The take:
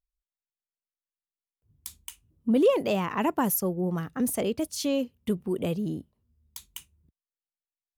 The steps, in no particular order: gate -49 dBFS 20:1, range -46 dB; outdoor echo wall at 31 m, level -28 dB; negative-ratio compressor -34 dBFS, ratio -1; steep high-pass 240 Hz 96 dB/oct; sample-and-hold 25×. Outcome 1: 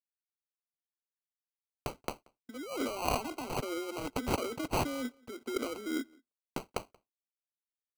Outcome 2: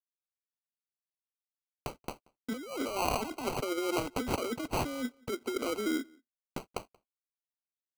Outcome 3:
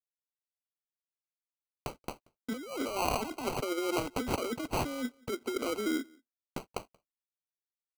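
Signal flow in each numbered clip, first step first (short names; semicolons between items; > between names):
negative-ratio compressor > steep high-pass > sample-and-hold > gate > outdoor echo; steep high-pass > gate > negative-ratio compressor > sample-and-hold > outdoor echo; steep high-pass > gate > negative-ratio compressor > outdoor echo > sample-and-hold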